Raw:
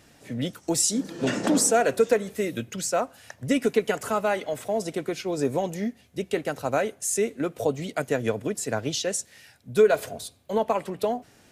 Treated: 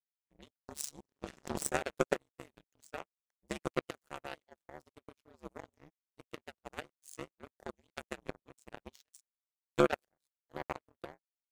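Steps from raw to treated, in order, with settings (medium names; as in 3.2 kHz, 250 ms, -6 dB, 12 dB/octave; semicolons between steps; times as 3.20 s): 8.94–9.78 s: amplifier tone stack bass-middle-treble 10-0-10; ring modulator 72 Hz; power-law waveshaper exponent 3; trim +1.5 dB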